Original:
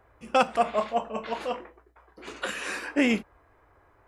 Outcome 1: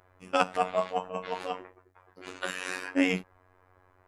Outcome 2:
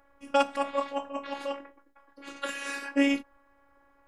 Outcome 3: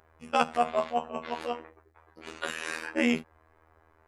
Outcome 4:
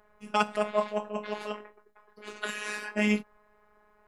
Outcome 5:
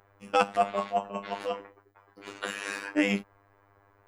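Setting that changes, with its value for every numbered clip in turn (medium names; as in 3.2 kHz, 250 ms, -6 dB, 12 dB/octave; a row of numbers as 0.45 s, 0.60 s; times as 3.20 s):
robot voice, frequency: 92 Hz, 280 Hz, 80 Hz, 210 Hz, 100 Hz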